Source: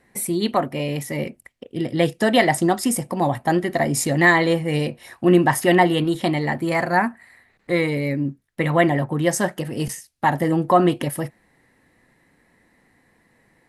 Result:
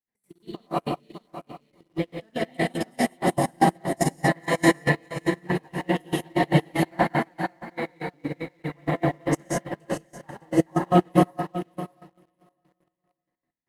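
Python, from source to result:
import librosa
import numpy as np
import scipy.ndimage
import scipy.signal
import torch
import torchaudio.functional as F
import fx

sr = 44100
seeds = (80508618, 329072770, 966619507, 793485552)

p1 = fx.reverse_delay_fb(x, sr, ms=223, feedback_pct=50, wet_db=-2.5)
p2 = fx.level_steps(p1, sr, step_db=21)
p3 = p2 + fx.echo_feedback(p2, sr, ms=605, feedback_pct=26, wet_db=-5.0, dry=0)
p4 = fx.rev_gated(p3, sr, seeds[0], gate_ms=220, shape='rising', drr_db=-3.5)
p5 = fx.step_gate(p4, sr, bpm=191, pattern='.x.x..x.', floor_db=-12.0, edge_ms=4.5)
p6 = fx.quant_dither(p5, sr, seeds[1], bits=6, dither='none')
p7 = p5 + (p6 * 10.0 ** (-7.5 / 20.0))
p8 = fx.high_shelf(p7, sr, hz=7600.0, db=-6.5)
p9 = fx.upward_expand(p8, sr, threshold_db=-27.0, expansion=2.5)
y = p9 * 10.0 ** (-2.5 / 20.0)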